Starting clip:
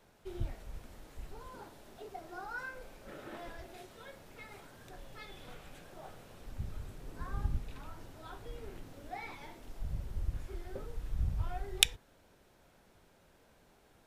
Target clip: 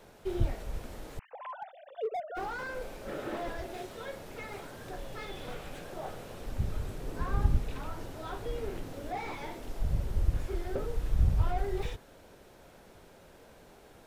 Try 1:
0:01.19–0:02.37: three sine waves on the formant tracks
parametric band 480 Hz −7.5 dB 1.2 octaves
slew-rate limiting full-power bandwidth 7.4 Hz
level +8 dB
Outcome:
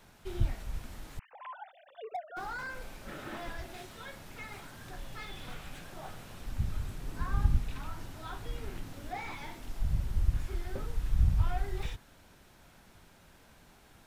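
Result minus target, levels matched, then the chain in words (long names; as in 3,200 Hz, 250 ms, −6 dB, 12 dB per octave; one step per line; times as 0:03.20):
500 Hz band −7.5 dB
0:01.19–0:02.37: three sine waves on the formant tracks
parametric band 480 Hz +4 dB 1.2 octaves
slew-rate limiting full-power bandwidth 7.4 Hz
level +8 dB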